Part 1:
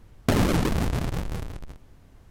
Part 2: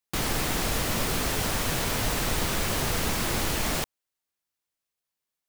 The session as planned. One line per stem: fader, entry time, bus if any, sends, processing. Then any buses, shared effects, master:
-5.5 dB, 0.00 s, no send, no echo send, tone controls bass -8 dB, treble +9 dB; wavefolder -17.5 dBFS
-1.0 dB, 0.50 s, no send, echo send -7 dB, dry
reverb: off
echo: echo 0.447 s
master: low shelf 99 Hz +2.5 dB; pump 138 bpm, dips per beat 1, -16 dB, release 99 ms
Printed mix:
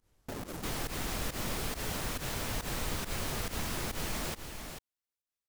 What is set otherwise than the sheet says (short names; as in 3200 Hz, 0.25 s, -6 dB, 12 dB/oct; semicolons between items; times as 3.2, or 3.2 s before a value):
stem 1 -5.5 dB -> -15.0 dB; stem 2 -1.0 dB -> -9.5 dB